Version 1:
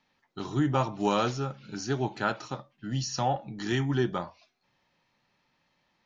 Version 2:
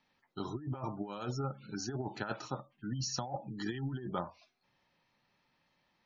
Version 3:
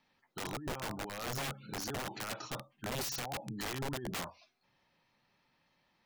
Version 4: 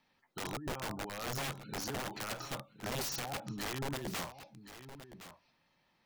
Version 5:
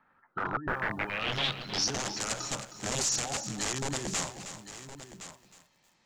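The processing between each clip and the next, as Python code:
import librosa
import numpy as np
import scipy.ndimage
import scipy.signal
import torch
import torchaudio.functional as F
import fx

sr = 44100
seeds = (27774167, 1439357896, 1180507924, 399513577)

y1 = fx.spec_gate(x, sr, threshold_db=-25, keep='strong')
y1 = fx.over_compress(y1, sr, threshold_db=-30.0, ratio=-0.5)
y1 = y1 * librosa.db_to_amplitude(-6.0)
y2 = (np.mod(10.0 ** (33.5 / 20.0) * y1 + 1.0, 2.0) - 1.0) / 10.0 ** (33.5 / 20.0)
y2 = y2 * librosa.db_to_amplitude(1.0)
y3 = y2 + 10.0 ** (-13.0 / 20.0) * np.pad(y2, (int(1065 * sr / 1000.0), 0))[:len(y2)]
y4 = fx.filter_sweep_lowpass(y3, sr, from_hz=1400.0, to_hz=7200.0, start_s=0.62, end_s=2.08, q=5.4)
y4 = fx.echo_crushed(y4, sr, ms=314, feedback_pct=35, bits=10, wet_db=-11)
y4 = y4 * librosa.db_to_amplitude(3.5)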